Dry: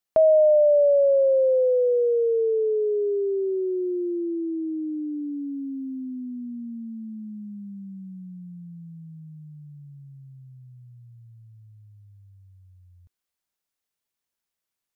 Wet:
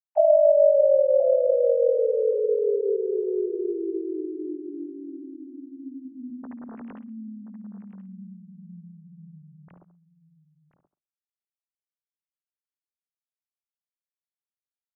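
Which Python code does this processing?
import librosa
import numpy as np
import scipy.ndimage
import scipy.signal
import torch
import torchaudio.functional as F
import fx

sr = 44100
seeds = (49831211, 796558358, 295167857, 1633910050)

y = fx.sine_speech(x, sr)
y = fx.room_flutter(y, sr, wall_m=11.6, rt60_s=0.29)
y = fx.granulator(y, sr, seeds[0], grain_ms=100.0, per_s=20.0, spray_ms=17.0, spread_st=0)
y = y + 10.0 ** (-13.5 / 20.0) * np.pad(y, (int(1028 * sr / 1000.0), 0))[:len(y)]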